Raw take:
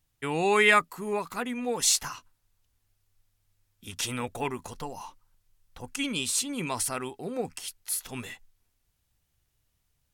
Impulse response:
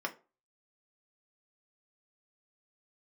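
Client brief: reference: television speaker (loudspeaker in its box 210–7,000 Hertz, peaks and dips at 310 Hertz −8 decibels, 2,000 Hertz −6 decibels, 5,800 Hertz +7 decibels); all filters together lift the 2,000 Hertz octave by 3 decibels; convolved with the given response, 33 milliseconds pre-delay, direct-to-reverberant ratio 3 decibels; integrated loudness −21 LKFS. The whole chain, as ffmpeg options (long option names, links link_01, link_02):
-filter_complex "[0:a]equalizer=frequency=2000:width_type=o:gain=7.5,asplit=2[link_01][link_02];[1:a]atrim=start_sample=2205,adelay=33[link_03];[link_02][link_03]afir=irnorm=-1:irlink=0,volume=-7dB[link_04];[link_01][link_04]amix=inputs=2:normalize=0,highpass=frequency=210:width=0.5412,highpass=frequency=210:width=1.3066,equalizer=frequency=310:width_type=q:width=4:gain=-8,equalizer=frequency=2000:width_type=q:width=4:gain=-6,equalizer=frequency=5800:width_type=q:width=4:gain=7,lowpass=frequency=7000:width=0.5412,lowpass=frequency=7000:width=1.3066,volume=3.5dB"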